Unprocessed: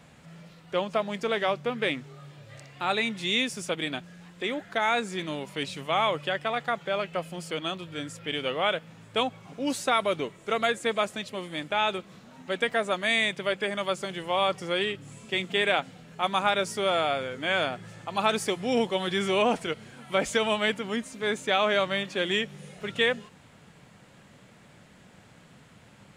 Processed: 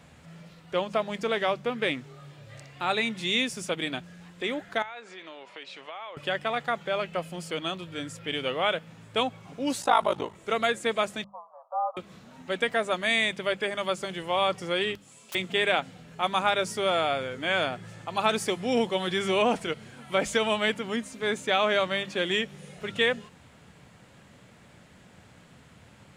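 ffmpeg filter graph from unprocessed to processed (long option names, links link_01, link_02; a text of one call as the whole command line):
ffmpeg -i in.wav -filter_complex "[0:a]asettb=1/sr,asplit=3[link_01][link_02][link_03];[link_01]atrim=end=4.824[link_04];[link_02]atrim=start=4.82:end=6.17,asetpts=PTS-STARTPTS,afade=type=in:duration=0.004:curve=qsin,afade=type=out:start_time=1.346:duration=0.004:curve=qsin,acompressor=threshold=-34dB:ratio=16:attack=3.2:release=140:knee=1:detection=peak,highpass=510,lowpass=3800[link_05];[link_03]atrim=start=6.166[link_06];[link_04][link_05]acrossfade=duration=0.004:curve1=hsin:curve2=qsin[link_07];[link_07][link_06]acrossfade=duration=0.004:curve1=qsin:curve2=hsin,asettb=1/sr,asplit=3[link_08][link_09][link_10];[link_08]atrim=end=9.814[link_11];[link_09]atrim=start=9.81:end=10.35,asetpts=PTS-STARTPTS,afade=type=in:duration=0.004:curve=qsin,afade=type=out:start_time=0.536:duration=0.004:curve=qsin,bandreject=frequency=2300:width=11,aeval=exprs='val(0)*sin(2*PI*26*n/s)':channel_layout=same,equalizer=frequency=870:width_type=o:width=0.62:gain=12.5[link_12];[link_10]atrim=start=10.346[link_13];[link_11][link_12]acrossfade=duration=0.004:curve1=hsin:curve2=qsin[link_14];[link_14][link_13]acrossfade=duration=0.004:curve1=qsin:curve2=hsin,asettb=1/sr,asplit=3[link_15][link_16][link_17];[link_15]atrim=end=11.244[link_18];[link_16]atrim=start=11.24:end=11.97,asetpts=PTS-STARTPTS,afade=type=in:duration=0.004:curve=qsin,afade=type=out:start_time=0.726:duration=0.004:curve=qsin,asuperpass=centerf=900:order=12:qfactor=1.5,afreqshift=-62[link_19];[link_17]atrim=start=11.966[link_20];[link_18][link_19]acrossfade=duration=0.004:curve1=hsin:curve2=qsin[link_21];[link_21][link_20]acrossfade=duration=0.004:curve1=qsin:curve2=hsin,asettb=1/sr,asplit=3[link_22][link_23][link_24];[link_22]atrim=end=14.954[link_25];[link_23]atrim=start=14.95:end=15.35,asetpts=PTS-STARTPTS,afade=type=in:duration=0.004:curve=qsin,afade=type=out:start_time=0.396:duration=0.004:curve=qsin,equalizer=frequency=1800:width_type=o:width=1.1:gain=-5.5,aeval=exprs='(mod(44.7*val(0)+1,2)-1)/44.7':channel_layout=same,highpass=frequency=1000:poles=1[link_26];[link_24]atrim=start=15.346[link_27];[link_25][link_26]acrossfade=duration=0.004:curve1=hsin:curve2=qsin[link_28];[link_28][link_27]acrossfade=duration=0.004:curve1=qsin:curve2=hsin,equalizer=frequency=76:width_type=o:width=0.77:gain=6.5,bandreject=frequency=50:width_type=h:width=6,bandreject=frequency=100:width_type=h:width=6,bandreject=frequency=150:width_type=h:width=6,bandreject=frequency=200:width_type=h:width=6" out.wav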